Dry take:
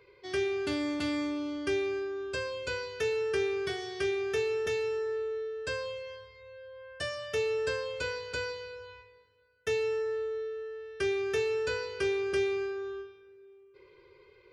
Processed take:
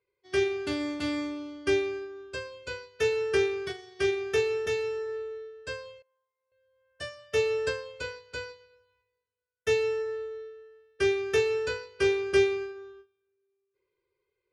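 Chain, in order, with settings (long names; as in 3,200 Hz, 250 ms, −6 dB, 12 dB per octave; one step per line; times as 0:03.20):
0:06.02–0:06.52: resonant band-pass 900 Hz, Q 2.7
expander for the loud parts 2.5 to 1, over −47 dBFS
level +8 dB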